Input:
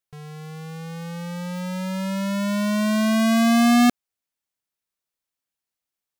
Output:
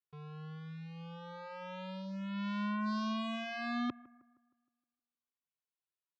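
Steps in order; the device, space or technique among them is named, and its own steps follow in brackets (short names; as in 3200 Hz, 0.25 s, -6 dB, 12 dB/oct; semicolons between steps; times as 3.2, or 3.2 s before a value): 2.85–3.59 bell 4200 Hz -> 13000 Hz +11 dB 0.55 oct; barber-pole flanger into a guitar amplifier (endless flanger 2.3 ms -0.36 Hz; soft clip -21.5 dBFS, distortion -15 dB; speaker cabinet 87–3700 Hz, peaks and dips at 190 Hz -5 dB, 670 Hz -10 dB, 1000 Hz +4 dB, 2000 Hz -7 dB); analogue delay 0.156 s, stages 2048, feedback 46%, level -21 dB; gain -7 dB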